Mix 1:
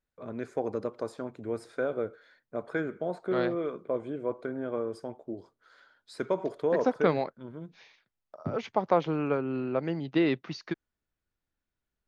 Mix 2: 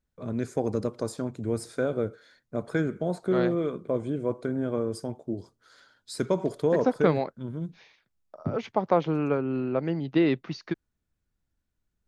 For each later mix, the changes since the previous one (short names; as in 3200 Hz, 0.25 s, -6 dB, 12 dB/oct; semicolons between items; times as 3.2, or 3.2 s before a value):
first voice: add tone controls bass +8 dB, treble +15 dB; master: add low shelf 380 Hz +5 dB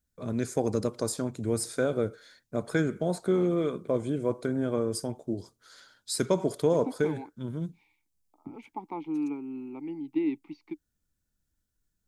second voice: add vowel filter u; master: add high shelf 4500 Hz +11.5 dB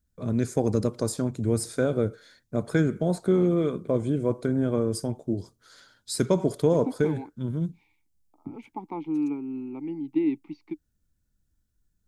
master: add low shelf 280 Hz +8 dB